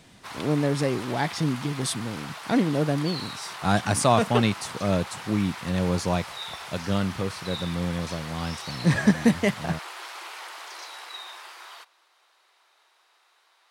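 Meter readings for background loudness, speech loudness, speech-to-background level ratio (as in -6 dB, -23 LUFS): -37.5 LUFS, -26.0 LUFS, 11.5 dB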